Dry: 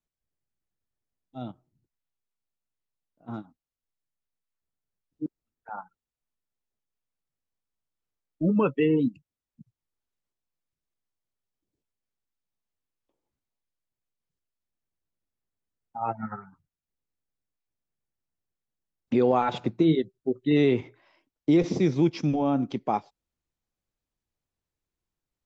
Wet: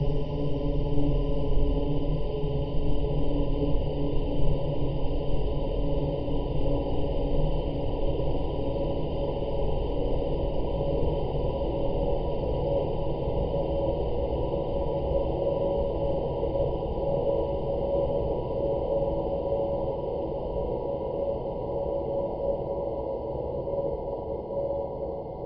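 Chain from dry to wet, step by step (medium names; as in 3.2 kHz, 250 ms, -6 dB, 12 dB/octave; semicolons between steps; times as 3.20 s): level-controlled noise filter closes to 370 Hz, open at -22.5 dBFS; spectral gate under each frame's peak -20 dB strong; frequency shift -280 Hz; in parallel at +2 dB: compressor with a negative ratio -27 dBFS, ratio -0.5; on the sum: Paulstretch 49×, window 1.00 s, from 22.59 s; on a send: flutter echo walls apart 8.9 m, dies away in 0.46 s; on the sum: three bands expanded up and down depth 40%; trim -5.5 dB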